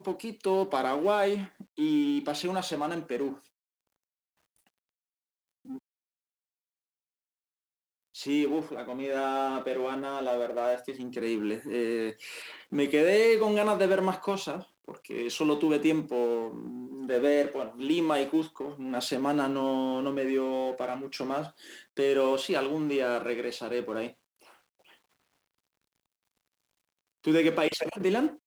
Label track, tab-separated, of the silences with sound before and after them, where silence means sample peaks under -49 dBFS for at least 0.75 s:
3.390000	5.650000	silence
5.780000	8.150000	silence
24.940000	27.240000	silence